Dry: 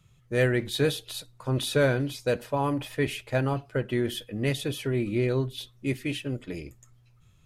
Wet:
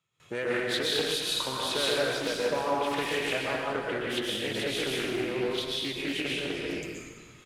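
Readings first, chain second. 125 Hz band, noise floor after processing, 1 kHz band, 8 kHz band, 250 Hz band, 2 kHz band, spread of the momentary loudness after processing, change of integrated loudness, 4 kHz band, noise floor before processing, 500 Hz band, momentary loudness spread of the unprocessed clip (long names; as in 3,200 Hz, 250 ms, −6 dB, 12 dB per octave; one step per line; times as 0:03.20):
−14.0 dB, −53 dBFS, +2.5 dB, +3.0 dB, −4.5 dB, +2.0 dB, 7 LU, −1.0 dB, +6.5 dB, −60 dBFS, −2.0 dB, 10 LU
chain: high-shelf EQ 2,500 Hz −3.5 dB
in parallel at −9.5 dB: hard clipping −30.5 dBFS, distortion −5 dB
on the sum: downward compressor 6 to 1, threshold −36 dBFS, peak gain reduction 16.5 dB
meter weighting curve A
dense smooth reverb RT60 1.4 s, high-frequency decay 0.95×, pre-delay 105 ms, DRR −5 dB
noise gate with hold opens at −55 dBFS
on a send: echo with shifted repeats 282 ms, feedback 46%, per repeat −110 Hz, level −16.5 dB
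on the sum: highs frequency-modulated by the lows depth 0.24 ms
level +7.5 dB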